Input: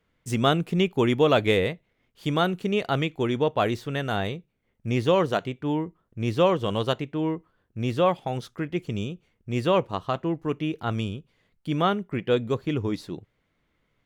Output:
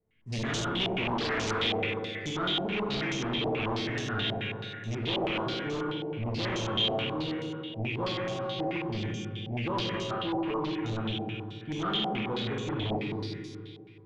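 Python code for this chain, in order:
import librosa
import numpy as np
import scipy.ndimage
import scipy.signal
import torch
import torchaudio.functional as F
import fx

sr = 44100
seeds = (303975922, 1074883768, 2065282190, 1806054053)

p1 = fx.band_shelf(x, sr, hz=870.0, db=-11.0, octaves=1.7)
p2 = fx.comb_fb(p1, sr, f0_hz=110.0, decay_s=0.81, harmonics='all', damping=0.0, mix_pct=90)
p3 = fx.rev_schroeder(p2, sr, rt60_s=2.4, comb_ms=26, drr_db=-3.0)
p4 = fx.fold_sine(p3, sr, drive_db=16, ceiling_db=-19.0)
p5 = p3 + (p4 * librosa.db_to_amplitude(-9.0))
p6 = fx.filter_held_lowpass(p5, sr, hz=9.3, low_hz=740.0, high_hz=6300.0)
y = p6 * librosa.db_to_amplitude(-4.5)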